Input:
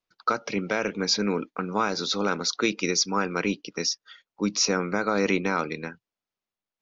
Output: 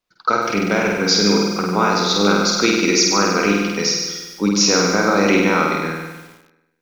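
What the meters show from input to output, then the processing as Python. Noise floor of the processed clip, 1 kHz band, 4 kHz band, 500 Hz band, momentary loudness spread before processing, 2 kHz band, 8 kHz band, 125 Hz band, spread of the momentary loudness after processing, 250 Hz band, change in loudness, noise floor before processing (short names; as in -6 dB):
-62 dBFS, +9.5 dB, +10.0 dB, +9.5 dB, 6 LU, +10.0 dB, n/a, +10.5 dB, 7 LU, +10.5 dB, +10.0 dB, under -85 dBFS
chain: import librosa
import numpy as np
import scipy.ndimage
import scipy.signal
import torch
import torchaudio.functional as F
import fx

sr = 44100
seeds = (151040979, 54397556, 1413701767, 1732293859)

y = fx.room_flutter(x, sr, wall_m=8.5, rt60_s=1.1)
y = fx.echo_crushed(y, sr, ms=143, feedback_pct=55, bits=7, wet_db=-10.5)
y = y * 10.0 ** (6.0 / 20.0)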